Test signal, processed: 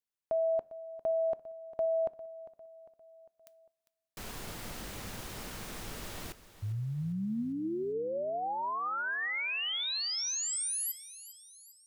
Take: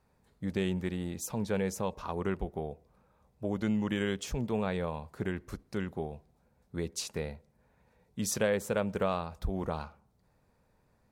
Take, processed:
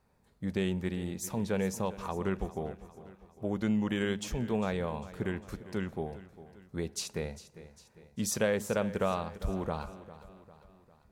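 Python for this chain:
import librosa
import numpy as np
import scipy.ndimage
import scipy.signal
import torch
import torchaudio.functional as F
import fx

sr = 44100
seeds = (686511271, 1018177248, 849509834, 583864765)

p1 = x + fx.echo_feedback(x, sr, ms=401, feedback_pct=50, wet_db=-16.0, dry=0)
y = fx.rev_double_slope(p1, sr, seeds[0], early_s=0.31, late_s=3.0, knee_db=-19, drr_db=19.0)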